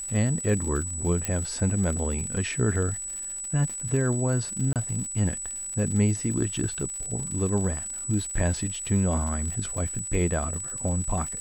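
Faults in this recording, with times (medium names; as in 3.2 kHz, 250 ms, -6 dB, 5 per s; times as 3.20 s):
crackle 100 per s -33 dBFS
whine 7.9 kHz -32 dBFS
1.25 s: pop -12 dBFS
4.73–4.76 s: dropout 28 ms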